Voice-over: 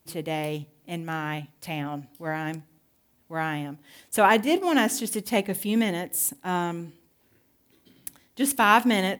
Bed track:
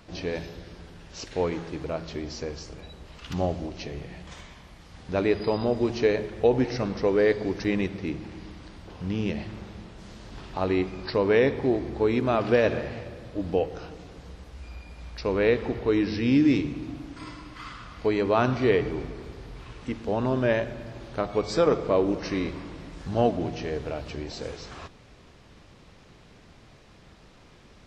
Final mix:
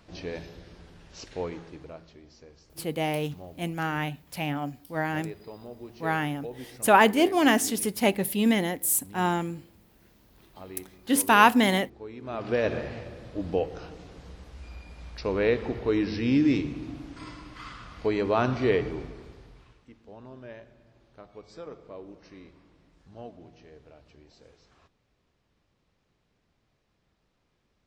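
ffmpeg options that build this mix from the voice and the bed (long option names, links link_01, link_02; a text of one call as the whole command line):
ffmpeg -i stem1.wav -i stem2.wav -filter_complex "[0:a]adelay=2700,volume=1dB[link_01];[1:a]volume=11dB,afade=type=out:start_time=1.24:duration=0.93:silence=0.223872,afade=type=in:start_time=12.19:duration=0.58:silence=0.158489,afade=type=out:start_time=18.77:duration=1.08:silence=0.11885[link_02];[link_01][link_02]amix=inputs=2:normalize=0" out.wav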